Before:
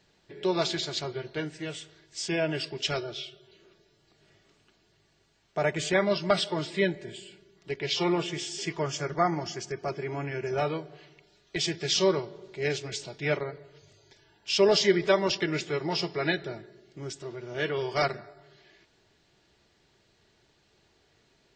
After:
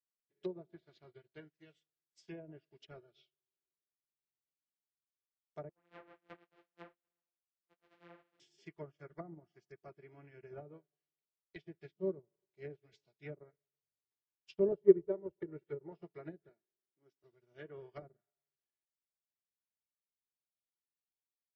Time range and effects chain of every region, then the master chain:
0:05.69–0:08.40: samples sorted by size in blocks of 256 samples + three-way crossover with the lows and the highs turned down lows −20 dB, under 290 Hz, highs −18 dB, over 3,600 Hz + micro pitch shift up and down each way 27 cents
0:14.72–0:15.92: low-pass filter 2,000 Hz 6 dB per octave + comb filter 2.2 ms, depth 56%
0:16.49–0:17.24: band-pass filter 220–6,500 Hz + high-shelf EQ 2,500 Hz −8 dB
whole clip: treble cut that deepens with the level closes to 450 Hz, closed at −23 dBFS; dynamic equaliser 880 Hz, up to −5 dB, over −48 dBFS, Q 1.9; expander for the loud parts 2.5 to 1, over −49 dBFS; level +1 dB

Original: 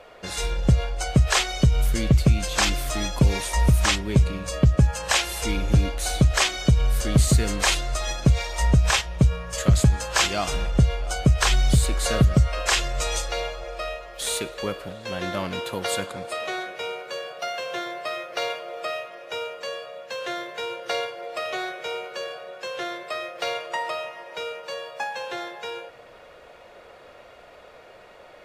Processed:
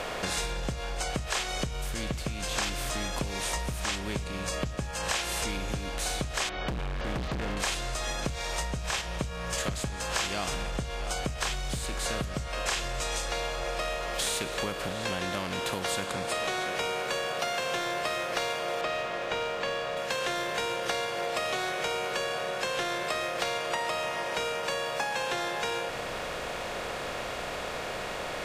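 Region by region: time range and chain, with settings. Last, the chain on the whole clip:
0:06.49–0:07.57: Gaussian smoothing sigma 3.2 samples + hard clipping −23 dBFS
0:18.81–0:19.97: notch filter 5,500 Hz, Q 6.4 + noise that follows the level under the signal 19 dB + high-frequency loss of the air 210 metres
whole clip: compressor on every frequency bin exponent 0.6; downward compressor, threshold −27 dBFS; parametric band 85 Hz −7 dB 2.3 octaves

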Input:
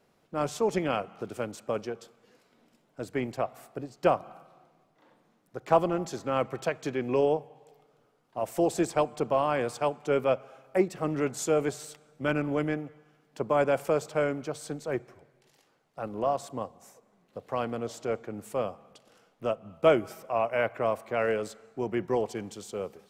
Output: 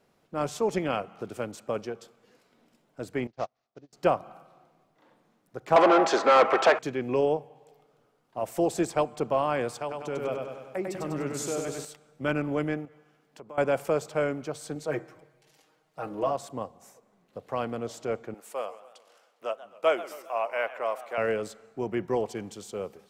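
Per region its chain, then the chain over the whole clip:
0:03.27–0:03.93: variable-slope delta modulation 32 kbit/s + expander for the loud parts 2.5 to 1, over −46 dBFS
0:05.76–0:06.79: parametric band 1,400 Hz +3.5 dB 2.1 octaves + mid-hump overdrive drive 30 dB, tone 1,400 Hz, clips at −7.5 dBFS + band-pass filter 370–7,100 Hz
0:09.79–0:11.85: downward compressor 2.5 to 1, threshold −31 dBFS + repeating echo 98 ms, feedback 57%, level −3.5 dB
0:12.85–0:13.58: low-shelf EQ 150 Hz −6 dB + downward compressor 2.5 to 1, threshold −48 dBFS
0:14.75–0:16.31: low-shelf EQ 110 Hz −8 dB + comb filter 6.4 ms, depth 89% + hum removal 81.17 Hz, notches 26
0:18.34–0:21.18: high-pass filter 580 Hz + feedback echo with a swinging delay time 135 ms, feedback 50%, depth 207 cents, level −16 dB
whole clip: no processing

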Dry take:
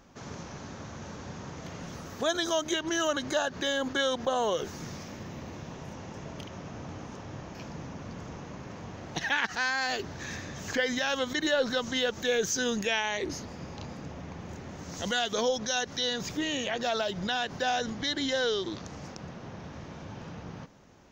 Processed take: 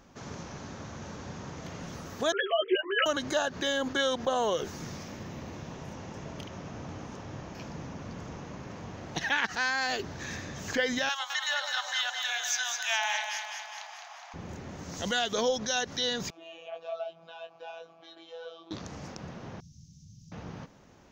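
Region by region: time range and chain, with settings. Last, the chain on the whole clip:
0:02.32–0:03.06: three sine waves on the formant tracks + double-tracking delay 13 ms −2 dB
0:11.09–0:14.34: Butterworth high-pass 680 Hz 72 dB per octave + delay that swaps between a low-pass and a high-pass 104 ms, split 870 Hz, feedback 75%, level −3 dB
0:16.30–0:18.71: double-tracking delay 21 ms −5 dB + phases set to zero 165 Hz + formant filter a
0:19.60–0:20.32: Chebyshev band-stop filter 160–5,600 Hz, order 3 + low-shelf EQ 430 Hz −7 dB
whole clip: no processing

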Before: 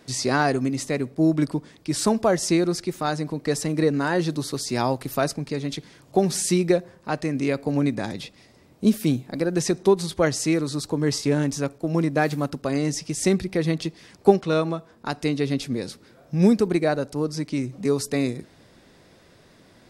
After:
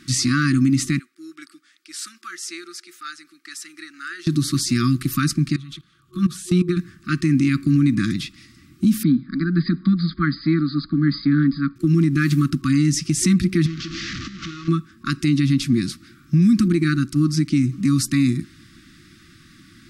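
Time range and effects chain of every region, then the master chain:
0:00.99–0:04.27: four-pole ladder high-pass 600 Hz, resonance 60% + notch filter 1,100 Hz, Q 5.9
0:05.56–0:06.77: drawn EQ curve 180 Hz 0 dB, 280 Hz −10 dB, 470 Hz +11 dB, 680 Hz −1 dB, 1,100 Hz +12 dB, 2,000 Hz −6 dB, 3,500 Hz +3 dB, 5,100 Hz −7 dB, 14,000 Hz −2 dB + output level in coarse steps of 21 dB
0:09.03–0:11.76: linear-phase brick-wall low-pass 5,000 Hz + phaser with its sweep stopped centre 560 Hz, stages 8
0:13.66–0:14.68: linear delta modulator 32 kbit/s, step −22.5 dBFS + downward compressor 10 to 1, threshold −26 dBFS + tuned comb filter 67 Hz, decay 1.5 s
whole clip: brick-wall band-stop 360–1,100 Hz; dynamic equaliser 170 Hz, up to +6 dB, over −36 dBFS, Q 0.79; brickwall limiter −16 dBFS; level +6.5 dB

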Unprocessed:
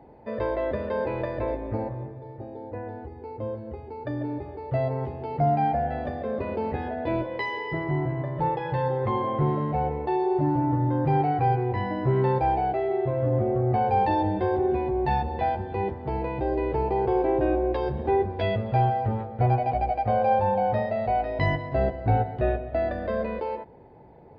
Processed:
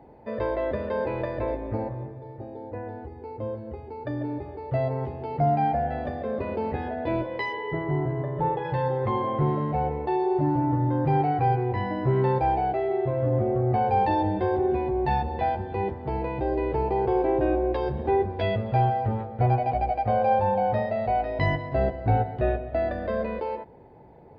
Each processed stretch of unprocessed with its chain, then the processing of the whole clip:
0:07.52–0:08.63: Butterworth low-pass 3,700 Hz + parametric band 2,400 Hz −6 dB 0.49 octaves + steady tone 420 Hz −35 dBFS
whole clip: no processing

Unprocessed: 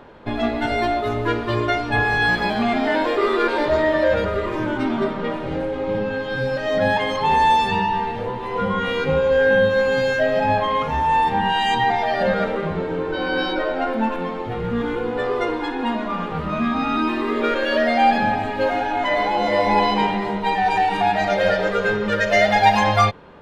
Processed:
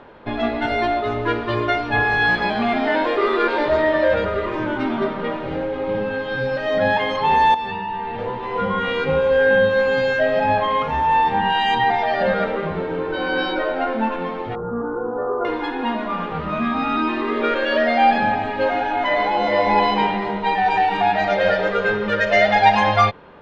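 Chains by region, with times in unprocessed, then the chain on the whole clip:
0:07.54–0:08.19: parametric band 6,500 Hz −8 dB 0.84 octaves + downward compressor 10 to 1, threshold −23 dBFS
0:14.55–0:15.45: elliptic low-pass filter 1,400 Hz + low-shelf EQ 120 Hz −8 dB
whole clip: low-pass filter 4,100 Hz 12 dB per octave; low-shelf EQ 280 Hz −4.5 dB; level +1.5 dB

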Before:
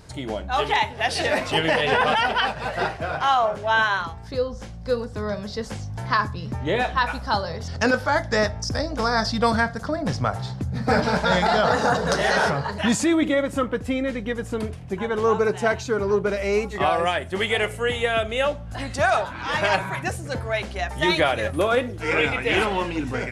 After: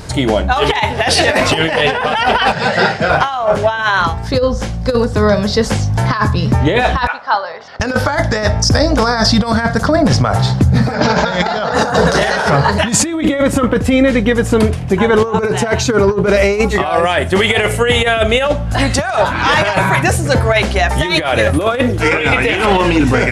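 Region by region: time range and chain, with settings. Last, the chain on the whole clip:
0:02.52–0:03.10: loudspeaker in its box 160–7,800 Hz, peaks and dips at 200 Hz +8 dB, 300 Hz −10 dB, 690 Hz −6 dB, 1,100 Hz −9 dB, 2,600 Hz −4 dB, 5,400 Hz +7 dB + notch filter 5,800 Hz, Q 6.5 + double-tracking delay 28 ms −12 dB
0:07.07–0:07.80: high-pass filter 970 Hz + head-to-tape spacing loss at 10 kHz 37 dB
0:10.94–0:11.74: high-pass filter 89 Hz + bad sample-rate conversion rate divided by 3×, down none, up filtered
whole clip: compressor whose output falls as the input rises −24 dBFS, ratio −0.5; boost into a limiter +15 dB; level −1 dB

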